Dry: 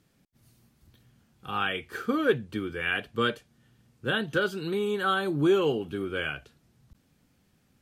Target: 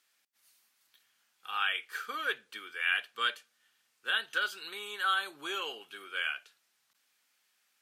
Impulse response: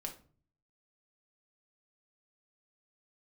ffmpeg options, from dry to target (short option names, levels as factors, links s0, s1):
-filter_complex "[0:a]highpass=1400,asplit=2[s0][s1];[1:a]atrim=start_sample=2205[s2];[s1][s2]afir=irnorm=-1:irlink=0,volume=0.188[s3];[s0][s3]amix=inputs=2:normalize=0"